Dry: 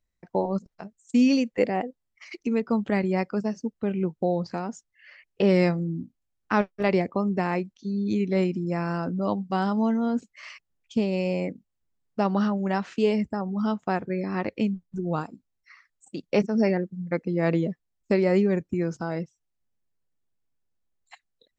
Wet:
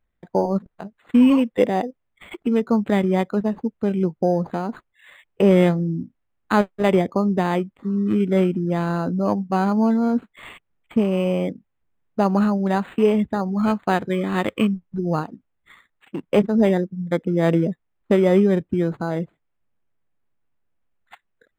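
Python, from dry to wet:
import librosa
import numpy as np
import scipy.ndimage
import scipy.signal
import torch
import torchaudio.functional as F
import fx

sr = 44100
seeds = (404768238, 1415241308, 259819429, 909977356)

y = fx.high_shelf(x, sr, hz=2100.0, db=11.5, at=(13.28, 14.74))
y = np.interp(np.arange(len(y)), np.arange(len(y))[::8], y[::8])
y = F.gain(torch.from_numpy(y), 5.5).numpy()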